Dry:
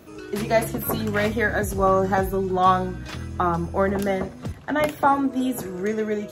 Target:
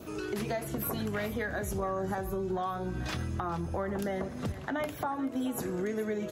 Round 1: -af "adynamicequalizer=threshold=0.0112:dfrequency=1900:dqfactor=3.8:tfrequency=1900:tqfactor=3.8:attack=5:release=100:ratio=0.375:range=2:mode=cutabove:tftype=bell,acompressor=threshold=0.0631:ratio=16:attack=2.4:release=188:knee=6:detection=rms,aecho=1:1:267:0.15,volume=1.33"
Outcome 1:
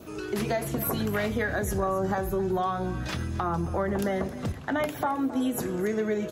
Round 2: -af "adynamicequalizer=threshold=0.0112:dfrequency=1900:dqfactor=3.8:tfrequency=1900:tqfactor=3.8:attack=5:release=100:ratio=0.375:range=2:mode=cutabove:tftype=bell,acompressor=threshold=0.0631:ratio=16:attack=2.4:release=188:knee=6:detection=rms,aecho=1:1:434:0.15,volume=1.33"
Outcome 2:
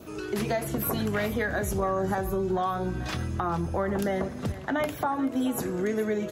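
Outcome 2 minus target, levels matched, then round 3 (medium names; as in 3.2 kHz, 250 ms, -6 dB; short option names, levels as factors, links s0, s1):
compression: peak gain reduction -5.5 dB
-af "adynamicequalizer=threshold=0.0112:dfrequency=1900:dqfactor=3.8:tfrequency=1900:tqfactor=3.8:attack=5:release=100:ratio=0.375:range=2:mode=cutabove:tftype=bell,acompressor=threshold=0.0316:ratio=16:attack=2.4:release=188:knee=6:detection=rms,aecho=1:1:434:0.15,volume=1.33"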